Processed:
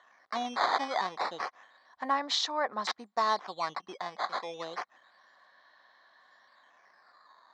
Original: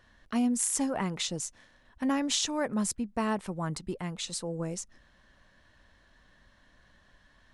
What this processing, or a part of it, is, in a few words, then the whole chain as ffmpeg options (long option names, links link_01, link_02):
circuit-bent sampling toy: -af "acrusher=samples=9:mix=1:aa=0.000001:lfo=1:lforange=14.4:lforate=0.3,highpass=590,equalizer=frequency=750:width_type=q:width=4:gain=8,equalizer=frequency=1100:width_type=q:width=4:gain=9,equalizer=frequency=1900:width_type=q:width=4:gain=4,equalizer=frequency=2700:width_type=q:width=4:gain=-10,equalizer=frequency=4100:width_type=q:width=4:gain=7,lowpass=frequency=5200:width=0.5412,lowpass=frequency=5200:width=1.3066"